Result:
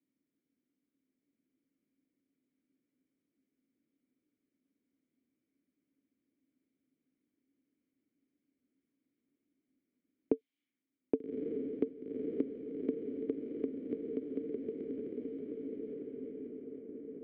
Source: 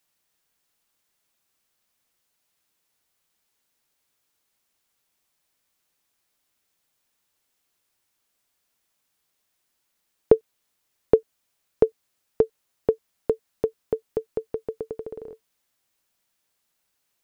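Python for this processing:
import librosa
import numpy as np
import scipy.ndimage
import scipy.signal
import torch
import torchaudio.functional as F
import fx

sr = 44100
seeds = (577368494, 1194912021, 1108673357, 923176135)

p1 = fx.vowel_filter(x, sr, vowel='i')
p2 = p1 + fx.echo_diffused(p1, sr, ms=1203, feedback_pct=50, wet_db=-3, dry=0)
p3 = fx.env_lowpass(p2, sr, base_hz=770.0, full_db=-41.5)
p4 = fx.high_shelf(p3, sr, hz=2000.0, db=-9.5)
p5 = fx.band_squash(p4, sr, depth_pct=40)
y = p5 * 10.0 ** (5.0 / 20.0)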